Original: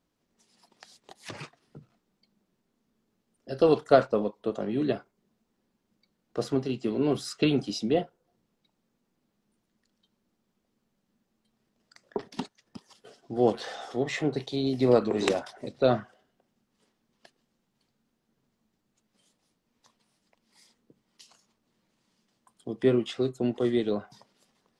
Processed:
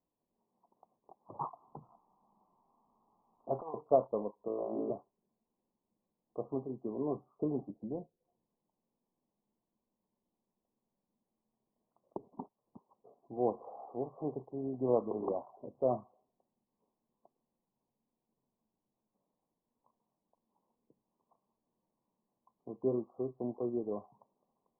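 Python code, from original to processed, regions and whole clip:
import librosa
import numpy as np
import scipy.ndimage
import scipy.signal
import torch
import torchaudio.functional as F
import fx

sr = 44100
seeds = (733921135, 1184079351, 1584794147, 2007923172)

y = fx.chain(x, sr, fx.band_shelf(hz=1200.0, db=15.5, octaves=1.7),
    fx.over_compress(threshold_db=-25.0, ratio=-0.5), at=(1.39, 3.74))
y = fx.chain(y, sr, fx.highpass(hz=400.0, slope=6),
    fx.room_flutter(wall_m=3.1, rt60_s=1.1), at=(4.48, 4.9))
y = fx.chain(y, sr, fx.env_lowpass_down(base_hz=320.0, full_db=-29.5),
    fx.doppler_dist(depth_ms=0.17), at=(7.61, 12.27))
y = scipy.signal.sosfilt(scipy.signal.butter(16, 1100.0, 'lowpass', fs=sr, output='sos'), y)
y = fx.low_shelf(y, sr, hz=470.0, db=-9.0)
y = y * 10.0 ** (-4.0 / 20.0)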